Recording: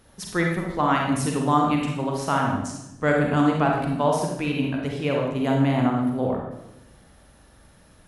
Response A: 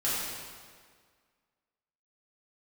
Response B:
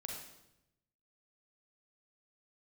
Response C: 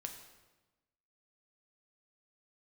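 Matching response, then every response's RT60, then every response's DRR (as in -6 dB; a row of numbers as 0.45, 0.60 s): B; 1.8, 0.85, 1.1 s; -10.0, -0.5, 4.0 dB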